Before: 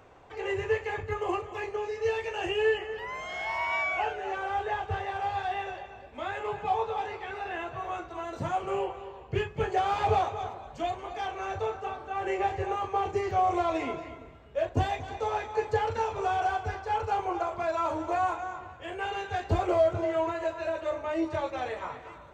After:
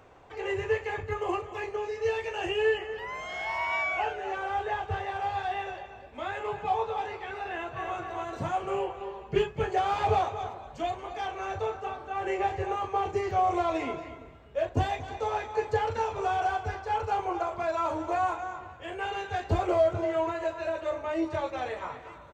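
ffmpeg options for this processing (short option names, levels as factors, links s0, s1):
-filter_complex "[0:a]asplit=2[s0][s1];[s1]afade=t=in:st=7.5:d=0.01,afade=t=out:st=7.98:d=0.01,aecho=0:1:260|520|780|1040|1300|1560:0.595662|0.297831|0.148916|0.0744578|0.0372289|0.0186144[s2];[s0][s2]amix=inputs=2:normalize=0,asettb=1/sr,asplit=3[s3][s4][s5];[s3]atrim=end=9.004[s6];[s4]atrim=start=9:end=9.51,asetpts=PTS-STARTPTS,afade=t=in:d=0.004:c=qsin,afade=t=out:st=0.506:d=0.004:c=qsin,aecho=1:1:5:0.94,atrim=end_sample=22491[s7];[s5]atrim=start=9.506[s8];[s6][s7]acrossfade=d=0.004:c1=hsin:c2=qsin[s9];[s9][s8]acrossfade=d=0.004:c1=qsin:c2=hsin"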